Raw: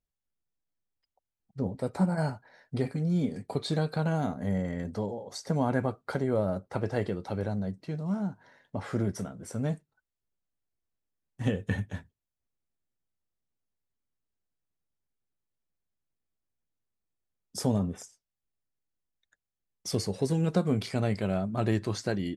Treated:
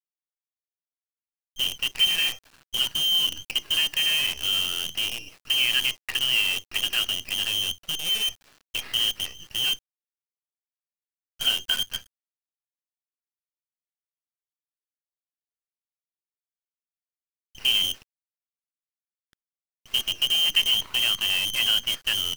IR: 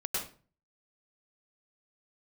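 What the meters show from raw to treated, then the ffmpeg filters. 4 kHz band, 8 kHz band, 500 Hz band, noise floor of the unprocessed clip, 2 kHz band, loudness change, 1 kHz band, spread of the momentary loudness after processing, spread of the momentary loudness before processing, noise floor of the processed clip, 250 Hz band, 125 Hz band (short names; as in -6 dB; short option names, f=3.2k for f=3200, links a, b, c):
+26.0 dB, +13.0 dB, -15.5 dB, under -85 dBFS, +14.0 dB, +8.5 dB, -5.0 dB, 9 LU, 11 LU, under -85 dBFS, -19.0 dB, -18.5 dB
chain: -af "lowpass=f=2.8k:t=q:w=0.5098,lowpass=f=2.8k:t=q:w=0.6013,lowpass=f=2.8k:t=q:w=0.9,lowpass=f=2.8k:t=q:w=2.563,afreqshift=-3300,acrusher=bits=6:dc=4:mix=0:aa=0.000001,volume=4dB"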